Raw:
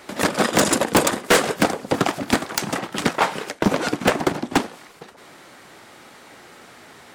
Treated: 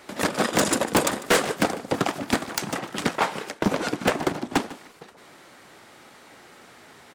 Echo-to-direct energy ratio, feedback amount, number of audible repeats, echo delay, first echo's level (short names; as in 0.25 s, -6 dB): -18.0 dB, 21%, 2, 0.149 s, -18.0 dB